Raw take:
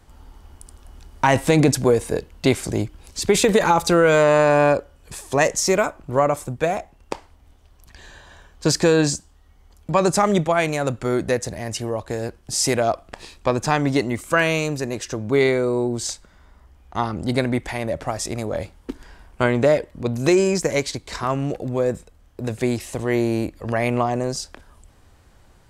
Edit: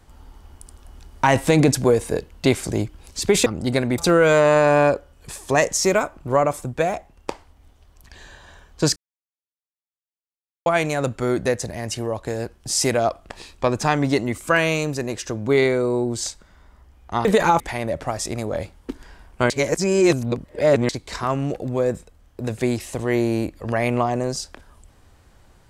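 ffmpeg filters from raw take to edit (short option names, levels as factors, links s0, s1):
-filter_complex "[0:a]asplit=9[s0][s1][s2][s3][s4][s5][s6][s7][s8];[s0]atrim=end=3.462[s9];[s1]atrim=start=17.078:end=17.602[s10];[s2]atrim=start=3.808:end=8.79,asetpts=PTS-STARTPTS,afade=t=out:st=4.978:d=0.004:c=hsin[s11];[s3]atrim=start=8.79:end=10.49,asetpts=PTS-STARTPTS,volume=0[s12];[s4]atrim=start=10.49:end=17.082,asetpts=PTS-STARTPTS,afade=t=in:d=0.004:c=hsin[s13];[s5]atrim=start=3.458:end=3.812[s14];[s6]atrim=start=17.598:end=19.502[s15];[s7]atrim=start=19.498:end=20.892,asetpts=PTS-STARTPTS,areverse[s16];[s8]atrim=start=20.888[s17];[s9][s10]acrossfade=d=0.004:c1=hsin:c2=hsin[s18];[s11][s12][s13]concat=n=3:v=0:a=1[s19];[s18][s19]acrossfade=d=0.004:c1=hsin:c2=hsin[s20];[s20][s14]acrossfade=d=0.004:c1=hsin:c2=hsin[s21];[s21][s15]acrossfade=d=0.004:c1=hsin:c2=hsin[s22];[s22][s16]acrossfade=d=0.004:c1=hsin:c2=hsin[s23];[s23][s17]acrossfade=d=0.004:c1=hsin:c2=hsin"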